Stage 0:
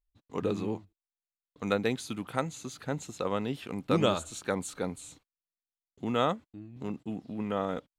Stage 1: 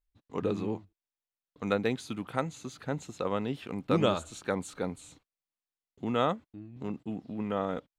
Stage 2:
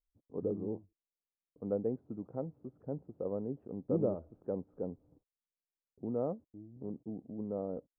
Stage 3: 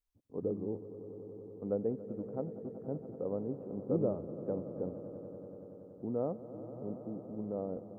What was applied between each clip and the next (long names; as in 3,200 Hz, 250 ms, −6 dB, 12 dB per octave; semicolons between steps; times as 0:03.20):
high-shelf EQ 5,400 Hz −7.5 dB
transistor ladder low-pass 670 Hz, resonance 30%
echo that builds up and dies away 94 ms, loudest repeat 5, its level −16.5 dB